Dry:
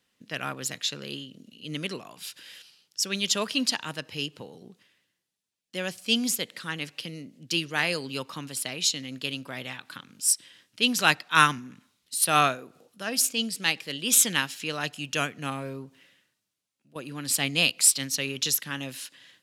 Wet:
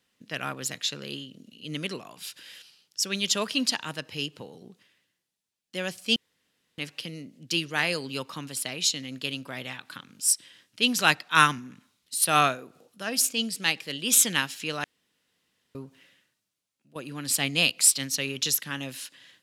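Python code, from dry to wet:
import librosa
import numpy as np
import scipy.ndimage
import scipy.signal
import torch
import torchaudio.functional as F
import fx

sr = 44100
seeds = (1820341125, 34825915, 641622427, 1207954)

y = fx.edit(x, sr, fx.room_tone_fill(start_s=6.16, length_s=0.62),
    fx.room_tone_fill(start_s=14.84, length_s=0.91), tone=tone)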